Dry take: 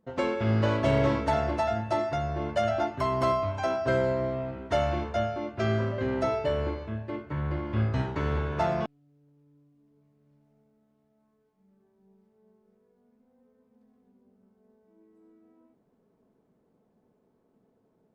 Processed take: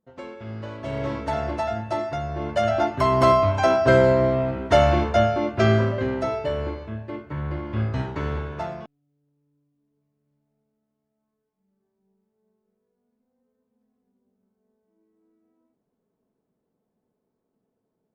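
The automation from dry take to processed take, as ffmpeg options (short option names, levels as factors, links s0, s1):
-af "volume=2.99,afade=t=in:st=0.76:d=0.71:silence=0.281838,afade=t=in:st=2.29:d=1.12:silence=0.375837,afade=t=out:st=5.6:d=0.59:silence=0.398107,afade=t=out:st=8.24:d=0.58:silence=0.316228"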